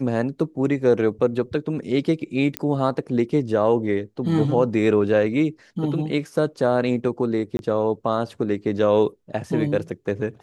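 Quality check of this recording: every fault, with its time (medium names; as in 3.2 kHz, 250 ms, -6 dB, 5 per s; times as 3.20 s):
2.57 s: pop -8 dBFS
7.57–7.59 s: dropout 21 ms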